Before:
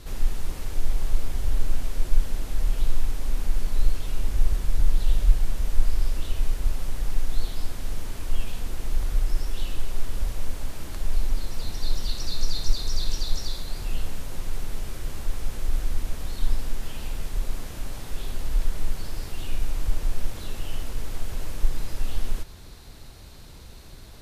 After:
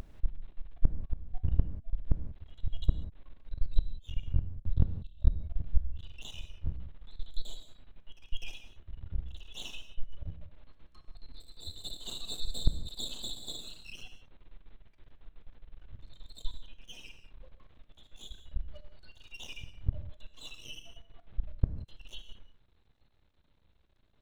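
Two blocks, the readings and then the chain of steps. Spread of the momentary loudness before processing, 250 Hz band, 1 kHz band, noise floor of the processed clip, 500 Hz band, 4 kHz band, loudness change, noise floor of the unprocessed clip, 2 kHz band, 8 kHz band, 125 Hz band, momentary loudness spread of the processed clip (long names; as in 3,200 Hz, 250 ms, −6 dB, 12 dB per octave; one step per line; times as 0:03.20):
8 LU, −6.5 dB, −17.5 dB, −65 dBFS, −13.5 dB, −5.5 dB, −7.0 dB, −43 dBFS, −11.5 dB, can't be measured, −5.5 dB, 21 LU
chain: Butterworth low-pass 4,000 Hz 96 dB per octave
noise reduction from a noise print of the clip's start 28 dB
dynamic equaliser 150 Hz, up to +5 dB, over −46 dBFS, Q 0.88
backwards echo 251 ms −14.5 dB
gate with flip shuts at −15 dBFS, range −34 dB
half-wave rectification
reverb whose tail is shaped and stops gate 210 ms flat, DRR 8.5 dB
level +5.5 dB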